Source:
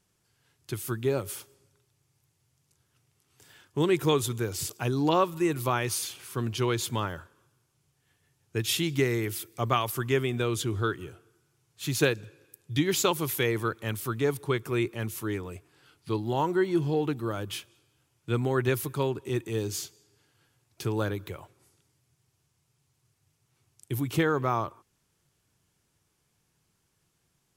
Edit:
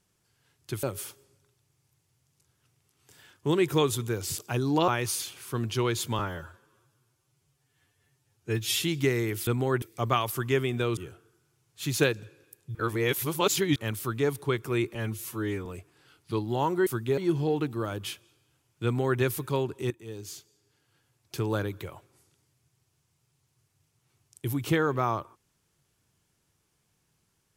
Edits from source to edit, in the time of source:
0.83–1.14 move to 16.64
5.19–5.71 cut
7.02–8.78 stretch 1.5×
10.57–10.98 cut
12.76–13.77 reverse
14.96–15.43 stretch 1.5×
18.31–18.66 copy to 9.42
19.37–20.86 fade in, from -14 dB

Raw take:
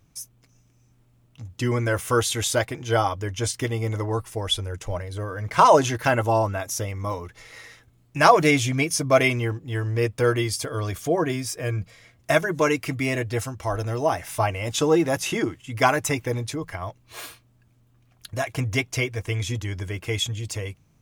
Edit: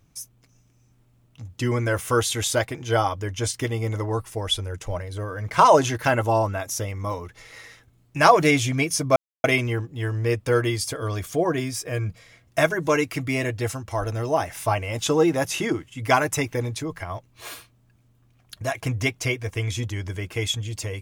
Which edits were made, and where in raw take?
9.16 insert silence 0.28 s

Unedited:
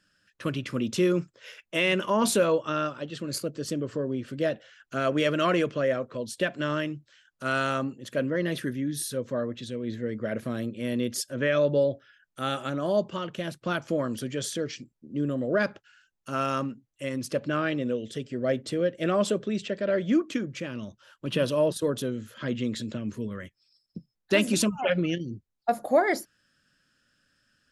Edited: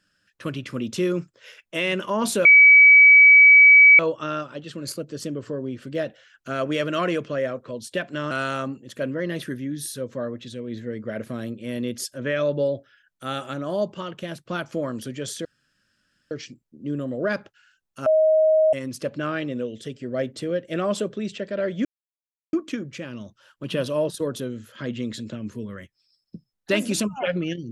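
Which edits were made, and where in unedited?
2.45 add tone 2280 Hz -7.5 dBFS 1.54 s
6.77–7.47 cut
14.61 insert room tone 0.86 s
16.36–17.03 bleep 629 Hz -14 dBFS
20.15 insert silence 0.68 s

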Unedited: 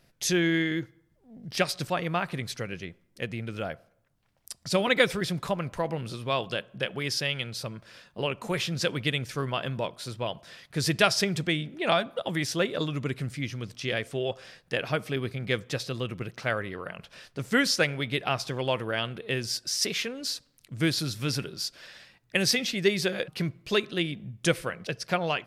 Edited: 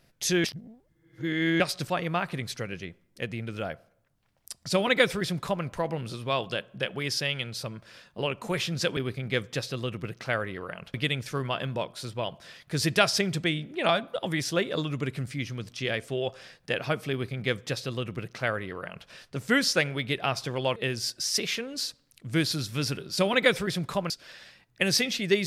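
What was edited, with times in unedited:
0.44–1.6 reverse
4.71–5.64 copy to 21.64
15.14–17.11 copy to 8.97
18.79–19.23 cut

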